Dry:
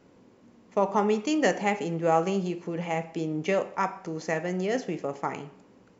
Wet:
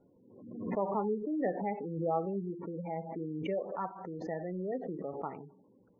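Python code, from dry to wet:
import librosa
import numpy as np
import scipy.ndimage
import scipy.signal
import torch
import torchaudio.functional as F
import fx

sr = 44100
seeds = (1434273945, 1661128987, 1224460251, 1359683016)

y = fx.spec_gate(x, sr, threshold_db=-15, keep='strong')
y = scipy.signal.sosfilt(scipy.signal.butter(2, 1300.0, 'lowpass', fs=sr, output='sos'), y)
y = fx.pre_swell(y, sr, db_per_s=59.0)
y = y * 10.0 ** (-8.0 / 20.0)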